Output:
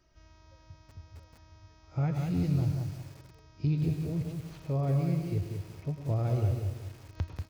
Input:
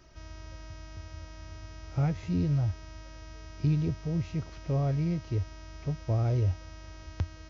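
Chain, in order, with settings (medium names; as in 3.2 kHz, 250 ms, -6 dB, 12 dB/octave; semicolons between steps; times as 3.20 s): spectral noise reduction 9 dB; 2.43–2.97 s: treble shelf 4.5 kHz +11.5 dB; 4.22–4.62 s: compressor with a negative ratio -60 dBFS, ratio -1; feedback delay 218 ms, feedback 49%, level -18 dB; reverberation RT60 0.35 s, pre-delay 96 ms, DRR 8.5 dB; bit-crushed delay 187 ms, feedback 35%, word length 8-bit, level -5 dB; trim -2 dB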